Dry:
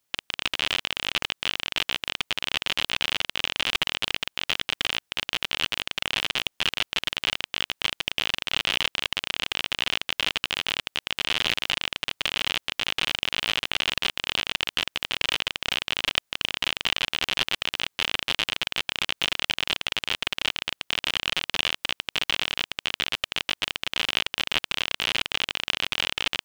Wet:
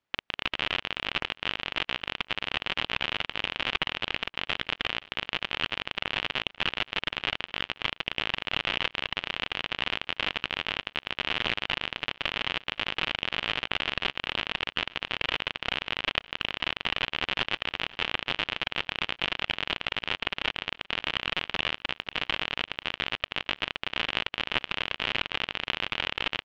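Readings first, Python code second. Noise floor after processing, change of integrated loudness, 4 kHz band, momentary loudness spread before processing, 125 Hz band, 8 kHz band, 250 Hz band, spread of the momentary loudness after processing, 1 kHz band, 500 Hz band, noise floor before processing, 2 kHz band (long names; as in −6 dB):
−75 dBFS, −3.5 dB, −5.0 dB, 3 LU, +0.5 dB, −17.0 dB, 0.0 dB, 3 LU, 0.0 dB, 0.0 dB, −76 dBFS, −2.0 dB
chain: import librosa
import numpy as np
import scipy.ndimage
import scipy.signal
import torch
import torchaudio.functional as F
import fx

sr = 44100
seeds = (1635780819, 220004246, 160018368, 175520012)

p1 = scipy.signal.sosfilt(scipy.signal.butter(2, 2600.0, 'lowpass', fs=sr, output='sos'), x)
p2 = fx.hpss(p1, sr, part='harmonic', gain_db=-3)
p3 = p2 + fx.echo_feedback(p2, sr, ms=523, feedback_pct=32, wet_db=-20.5, dry=0)
y = p3 * 10.0 ** (1.0 / 20.0)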